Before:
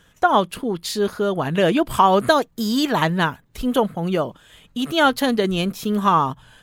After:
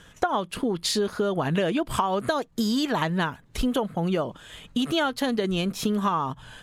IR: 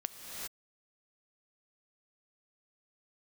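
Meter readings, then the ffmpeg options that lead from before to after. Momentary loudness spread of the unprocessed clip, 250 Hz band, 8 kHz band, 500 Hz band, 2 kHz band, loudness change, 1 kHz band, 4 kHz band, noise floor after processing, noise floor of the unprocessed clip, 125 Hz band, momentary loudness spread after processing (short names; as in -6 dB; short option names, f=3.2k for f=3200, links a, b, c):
8 LU, -4.5 dB, -1.5 dB, -6.5 dB, -7.0 dB, -6.0 dB, -8.5 dB, -4.0 dB, -54 dBFS, -57 dBFS, -4.0 dB, 5 LU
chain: -af "acompressor=threshold=-26dB:ratio=10,lowpass=11k,volume=4.5dB"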